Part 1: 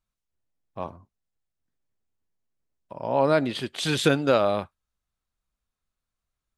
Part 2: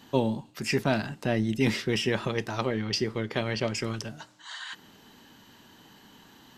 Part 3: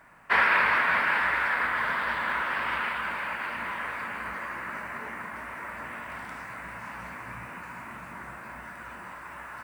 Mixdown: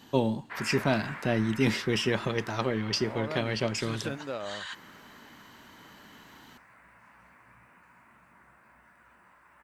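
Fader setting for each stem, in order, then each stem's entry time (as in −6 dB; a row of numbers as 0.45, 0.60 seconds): −15.5, −0.5, −17.5 decibels; 0.00, 0.00, 0.20 seconds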